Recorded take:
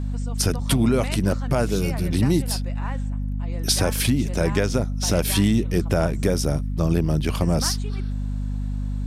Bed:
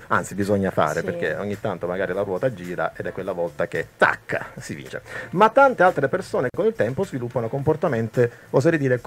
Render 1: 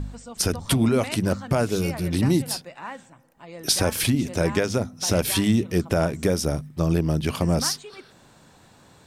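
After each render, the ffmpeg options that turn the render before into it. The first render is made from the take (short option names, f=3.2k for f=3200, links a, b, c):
-af "bandreject=f=50:t=h:w=4,bandreject=f=100:t=h:w=4,bandreject=f=150:t=h:w=4,bandreject=f=200:t=h:w=4,bandreject=f=250:t=h:w=4"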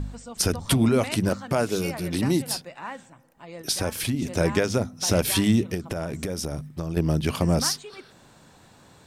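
-filter_complex "[0:a]asettb=1/sr,asplit=3[a][b][c];[a]atrim=end=1.294[d];[b]atrim=start=1.29:end=2.5,asetpts=PTS-STARTPTS,afade=t=in:d=0.004:c=qsin,afade=t=out:st=1.206:d=0.004:c=qsin,highpass=f=200:p=1[e];[c]atrim=start=2.496[f];[d][e]acrossfade=d=0.004:c1=hsin:c2=qsin[g];[g][f]acrossfade=d=0.004:c1=qsin:c2=hsin,asettb=1/sr,asplit=3[h][i][j];[h]atrim=end=5.744[k];[i]atrim=start=5.74:end=6.97,asetpts=PTS-STARTPTS,afade=t=in:d=0.004:c=qsin,afade=t=out:st=1.226:d=0.004:c=qsin,acompressor=threshold=-25dB:ratio=10:attack=3.2:release=140:knee=1:detection=peak[l];[j]atrim=start=6.966[m];[k][l]acrossfade=d=0.004:c1=hsin:c2=qsin[n];[n][m]acrossfade=d=0.004:c1=qsin:c2=hsin,asplit=3[o][p][q];[o]atrim=end=3.622[r];[p]atrim=start=3.618:end=4.222,asetpts=PTS-STARTPTS,volume=-5dB[s];[q]atrim=start=4.218[t];[r][s]acrossfade=d=0.004:c1=hsin:c2=hsin[u];[u][t]acrossfade=d=0.004:c1=hsin:c2=hsin"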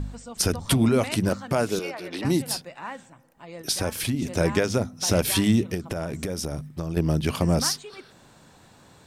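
-filter_complex "[0:a]asettb=1/sr,asplit=3[a][b][c];[a]atrim=end=1.794[d];[b]atrim=start=1.79:end=2.25,asetpts=PTS-STARTPTS,afade=t=in:d=0.004:c=qsin,afade=t=out:st=0.456:d=0.004:c=qsin,acrossover=split=300 5200:gain=0.0708 1 0.2[e][f][g];[e][f][g]amix=inputs=3:normalize=0[h];[c]atrim=start=2.246[i];[d][h]acrossfade=d=0.004:c1=hsin:c2=qsin[j];[j][i]acrossfade=d=0.004:c1=qsin:c2=hsin"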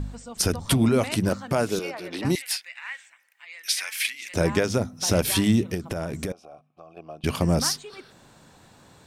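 -filter_complex "[0:a]asettb=1/sr,asplit=3[a][b][c];[a]atrim=end=2.354[d];[b]atrim=start=2.35:end=4.34,asetpts=PTS-STARTPTS,afade=t=in:d=0.004:c=qsin,afade=t=out:st=1.986:d=0.004:c=qsin,highpass=f=2.1k:t=q:w=3.6[e];[c]atrim=start=4.336[f];[d][e]acrossfade=d=0.004:c1=hsin:c2=qsin[g];[g][f]acrossfade=d=0.004:c1=qsin:c2=hsin,asettb=1/sr,asplit=3[h][i][j];[h]atrim=end=6.324[k];[i]atrim=start=6.32:end=7.24,asetpts=PTS-STARTPTS,afade=t=in:d=0.004:c=qsin,afade=t=out:st=0.916:d=0.004:c=qsin,asplit=3[l][m][n];[l]bandpass=f=730:t=q:w=8,volume=0dB[o];[m]bandpass=f=1.09k:t=q:w=8,volume=-6dB[p];[n]bandpass=f=2.44k:t=q:w=8,volume=-9dB[q];[o][p][q]amix=inputs=3:normalize=0[r];[j]atrim=start=7.236[s];[k][r]acrossfade=d=0.004:c1=hsin:c2=qsin[t];[t][s]acrossfade=d=0.004:c1=qsin:c2=hsin"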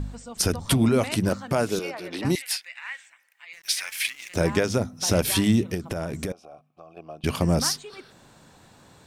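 -filter_complex "[0:a]asettb=1/sr,asplit=3[a][b][c];[a]atrim=end=3.534[d];[b]atrim=start=3.53:end=4.54,asetpts=PTS-STARTPTS,afade=t=in:d=0.004:c=qsin,afade=t=out:st=1.006:d=0.004:c=qsin,aeval=exprs='sgn(val(0))*max(abs(val(0))-0.00447,0)':c=same[e];[c]atrim=start=4.536[f];[d][e]acrossfade=d=0.004:c1=hsin:c2=qsin[g];[g][f]acrossfade=d=0.004:c1=qsin:c2=hsin"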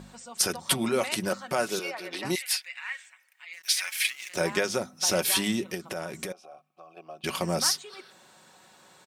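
-af "highpass=f=680:p=1,aecho=1:1:5.4:0.45"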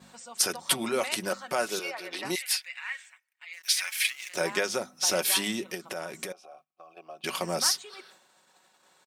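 -af "highpass=f=350:p=1,agate=range=-16dB:threshold=-55dB:ratio=16:detection=peak"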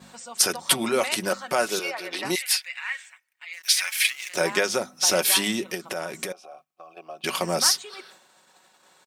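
-af "volume=5dB,alimiter=limit=-2dB:level=0:latency=1"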